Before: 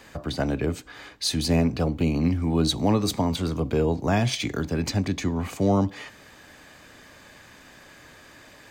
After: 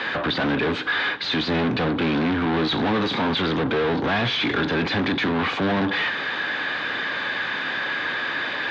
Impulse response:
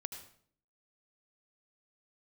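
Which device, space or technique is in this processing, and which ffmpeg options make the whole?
overdrive pedal into a guitar cabinet: -filter_complex "[0:a]asplit=2[s0][s1];[s1]highpass=f=720:p=1,volume=70.8,asoftclip=type=tanh:threshold=0.282[s2];[s0][s2]amix=inputs=2:normalize=0,lowpass=f=2400:p=1,volume=0.501,highpass=75,equalizer=f=78:t=q:w=4:g=-4,equalizer=f=630:t=q:w=4:g=-5,equalizer=f=1600:t=q:w=4:g=5,equalizer=f=3600:t=q:w=4:g=7,lowpass=f=4100:w=0.5412,lowpass=f=4100:w=1.3066,volume=0.631"

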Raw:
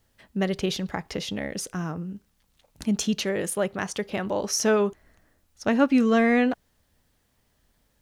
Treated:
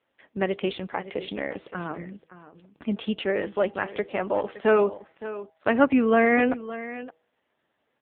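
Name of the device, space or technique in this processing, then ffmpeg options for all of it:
satellite phone: -af "highpass=310,lowpass=3200,aecho=1:1:567:0.188,bandreject=f=161:t=h:w=4,bandreject=f=322:t=h:w=4,bandreject=f=483:t=h:w=4,bandreject=f=644:t=h:w=4,bandreject=f=805:t=h:w=4,volume=1.58" -ar 8000 -c:a libopencore_amrnb -b:a 5900

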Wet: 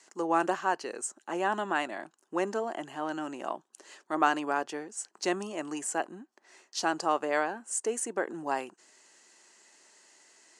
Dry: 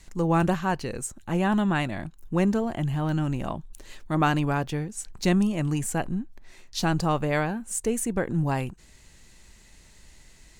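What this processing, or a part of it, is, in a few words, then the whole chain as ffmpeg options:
phone speaker on a table: -af "highpass=f=350:w=0.5412,highpass=f=350:w=1.3066,equalizer=f=500:t=q:w=4:g=-5,equalizer=f=2300:t=q:w=4:g=-7,equalizer=f=3700:t=q:w=4:g=-9,lowpass=f=8900:w=0.5412,lowpass=f=8900:w=1.3066"

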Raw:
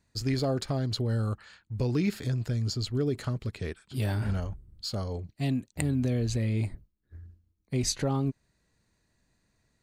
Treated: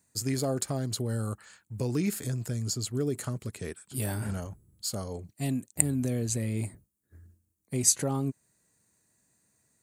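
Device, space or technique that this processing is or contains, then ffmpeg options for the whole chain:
budget condenser microphone: -af "highpass=110,highshelf=f=6000:t=q:w=1.5:g=12.5,volume=0.891"

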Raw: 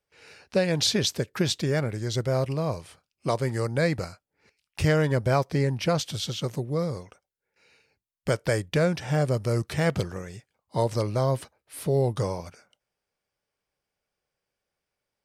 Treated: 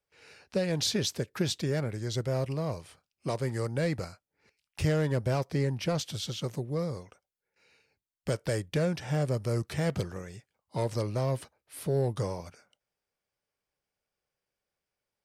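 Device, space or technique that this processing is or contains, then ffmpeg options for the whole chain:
one-band saturation: -filter_complex "[0:a]acrossover=split=500|4600[s0][s1][s2];[s1]asoftclip=type=tanh:threshold=0.0447[s3];[s0][s3][s2]amix=inputs=3:normalize=0,volume=0.631"

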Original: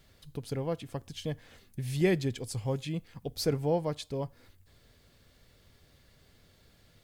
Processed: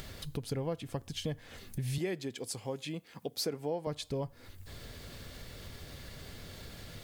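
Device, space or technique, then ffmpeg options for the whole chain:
upward and downward compression: -filter_complex "[0:a]acompressor=mode=upward:threshold=0.0178:ratio=2.5,acompressor=threshold=0.0251:ratio=5,asettb=1/sr,asplit=3[s0][s1][s2];[s0]atrim=end=1.984[s3];[s1]atrim=start=1.98:end=3.87,asetpts=PTS-STARTPTS,afade=t=in:d=0.004:c=qsin,afade=t=out:st=1.886:d=0.004:c=qsin,highpass=230[s4];[s2]atrim=start=3.866[s5];[s3][s4]acrossfade=d=0.004:c1=hsin:c2=qsin[s6];[s6][s5]acrossfade=d=0.004:c1=qsin:c2=hsin,volume=1.19"

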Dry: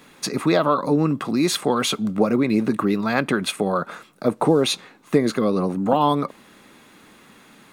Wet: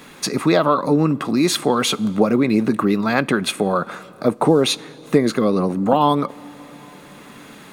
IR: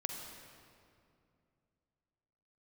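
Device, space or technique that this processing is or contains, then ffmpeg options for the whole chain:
ducked reverb: -filter_complex "[0:a]asplit=3[s0][s1][s2];[1:a]atrim=start_sample=2205[s3];[s1][s3]afir=irnorm=-1:irlink=0[s4];[s2]apad=whole_len=340495[s5];[s4][s5]sidechaincompress=threshold=0.0126:ratio=4:attack=6.4:release=789,volume=0.944[s6];[s0][s6]amix=inputs=2:normalize=0,volume=1.26"

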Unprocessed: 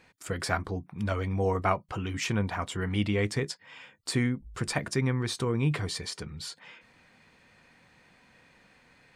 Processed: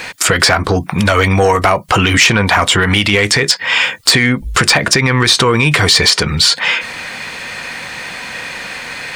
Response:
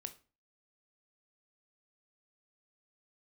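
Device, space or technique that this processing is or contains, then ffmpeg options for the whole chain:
mastering chain: -filter_complex "[0:a]equalizer=f=540:t=o:w=0.77:g=2.5,acrossover=split=820|5900[s0][s1][s2];[s0]acompressor=threshold=0.0282:ratio=4[s3];[s1]acompressor=threshold=0.0158:ratio=4[s4];[s2]acompressor=threshold=0.00178:ratio=4[s5];[s3][s4][s5]amix=inputs=3:normalize=0,acompressor=threshold=0.0158:ratio=2,asoftclip=type=tanh:threshold=0.0447,tiltshelf=f=780:g=-6.5,asoftclip=type=hard:threshold=0.0398,alimiter=level_in=39.8:limit=0.891:release=50:level=0:latency=1,volume=0.891"

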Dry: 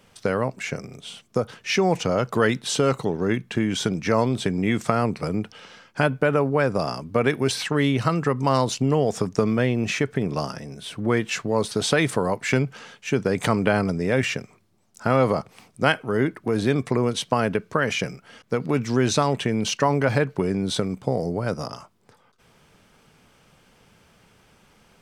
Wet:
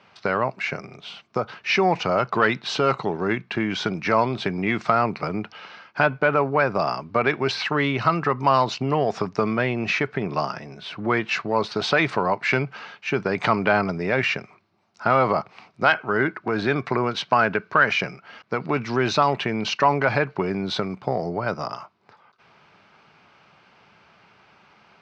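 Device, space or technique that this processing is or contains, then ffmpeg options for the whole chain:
overdrive pedal into a guitar cabinet: -filter_complex "[0:a]asplit=2[s0][s1];[s1]highpass=f=720:p=1,volume=4.47,asoftclip=type=tanh:threshold=0.891[s2];[s0][s2]amix=inputs=2:normalize=0,lowpass=f=3500:p=1,volume=0.501,highpass=79,equalizer=f=260:t=q:w=4:g=-5,equalizer=f=490:t=q:w=4:g=-8,equalizer=f=1800:t=q:w=4:g=-4,equalizer=f=3300:t=q:w=4:g=-7,lowpass=f=4600:w=0.5412,lowpass=f=4600:w=1.3066,asettb=1/sr,asplit=3[s3][s4][s5];[s3]atrim=end=15.954[s6];[s4]atrim=start=15.95:end=17.93,asetpts=PTS-STARTPTS,afade=t=in:d=0.004:c=qsin,afade=t=out:st=1.976:d=0.004:c=qsin,equalizer=f=1500:w=4.9:g=6[s7];[s5]atrim=start=17.926[s8];[s6][s7]acrossfade=d=0.004:c1=hsin:c2=qsin[s9];[s9][s8]acrossfade=d=0.004:c1=qsin:c2=hsin"

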